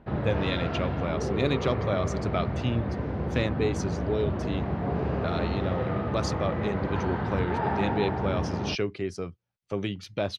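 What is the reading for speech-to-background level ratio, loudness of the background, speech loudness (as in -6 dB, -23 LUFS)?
-1.5 dB, -30.5 LUFS, -32.0 LUFS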